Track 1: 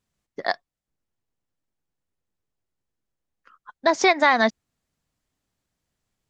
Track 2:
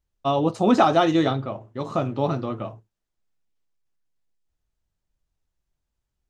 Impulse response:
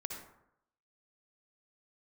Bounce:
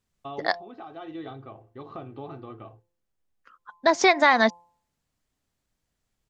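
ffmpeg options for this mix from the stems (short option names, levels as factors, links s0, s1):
-filter_complex "[0:a]volume=0.944,asplit=2[s0][s1];[1:a]lowpass=f=3700:w=0.5412,lowpass=f=3700:w=1.3066,aecho=1:1:2.6:0.51,acompressor=threshold=0.0355:ratio=2,volume=0.335[s2];[s1]apad=whole_len=277899[s3];[s2][s3]sidechaincompress=threshold=0.0355:ratio=6:attack=10:release=879[s4];[s0][s4]amix=inputs=2:normalize=0,bandreject=f=172.7:t=h:w=4,bandreject=f=345.4:t=h:w=4,bandreject=f=518.1:t=h:w=4,bandreject=f=690.8:t=h:w=4,bandreject=f=863.5:t=h:w=4,bandreject=f=1036.2:t=h:w=4"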